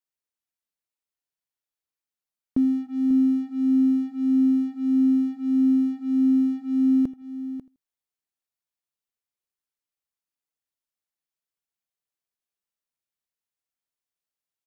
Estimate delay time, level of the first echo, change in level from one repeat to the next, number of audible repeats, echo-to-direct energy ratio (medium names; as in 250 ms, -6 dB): 81 ms, -21.0 dB, no regular repeats, 3, -11.5 dB